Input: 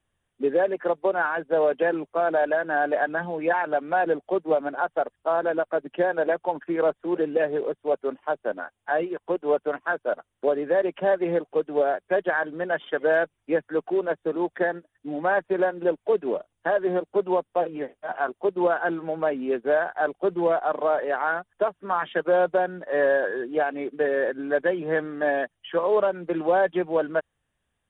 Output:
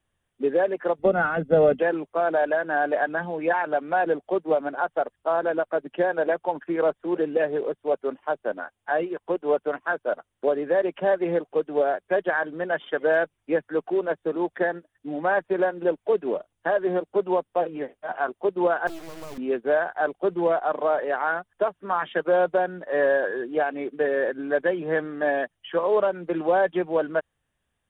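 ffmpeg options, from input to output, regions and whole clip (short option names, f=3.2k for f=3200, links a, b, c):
-filter_complex "[0:a]asettb=1/sr,asplit=3[a][b][c];[a]atrim=end=0.994[d];[b]atrim=start=0.99:end=1.8,asetpts=PTS-STARTPTS,afade=t=in:d=0.004:c=qsin,afade=t=out:st=0.806:d=0.004:c=qsin,lowshelf=f=430:t=q:w=1.5:g=13,aecho=1:1:1.5:0.7,atrim=end_sample=35721[e];[c]atrim=start=1.796[f];[d][e]acrossfade=d=0.004:c1=hsin:c2=qsin[g];[g][f]acrossfade=d=0.004:c1=qsin:c2=hsin,asettb=1/sr,asplit=3[h][i][j];[h]atrim=end=18.874[k];[i]atrim=start=18.87:end=19.38,asetpts=PTS-STARTPTS,afade=t=in:d=0.004:c=qsin,afade=t=out:st=0.506:d=0.004:c=qsin,bandpass=f=350:t=q:w=1.8,acompressor=threshold=-32dB:ratio=2.5:attack=3.2:release=140:knee=1:detection=peak,acrusher=bits=4:dc=4:mix=0:aa=0.000001[l];[j]atrim=start=19.376[m];[k][l]acrossfade=d=0.004:c1=hsin:c2=qsin[n];[n][m]acrossfade=d=0.004:c1=qsin:c2=hsin"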